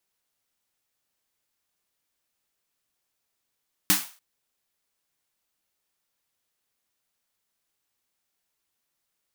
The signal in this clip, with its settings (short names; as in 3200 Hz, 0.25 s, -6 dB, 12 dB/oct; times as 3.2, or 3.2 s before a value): snare drum length 0.29 s, tones 190 Hz, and 300 Hz, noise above 770 Hz, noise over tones 8.5 dB, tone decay 0.21 s, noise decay 0.37 s